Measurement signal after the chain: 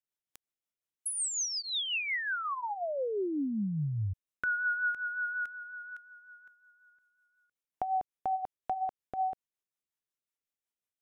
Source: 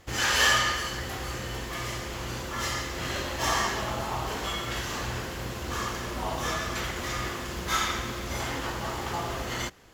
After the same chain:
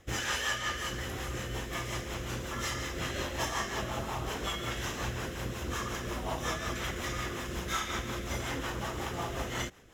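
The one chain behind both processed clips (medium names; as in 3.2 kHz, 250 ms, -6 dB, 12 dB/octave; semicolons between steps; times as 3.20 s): band-stop 4.5 kHz, Q 6; compression 6:1, threshold -27 dBFS; rotary cabinet horn 5.5 Hz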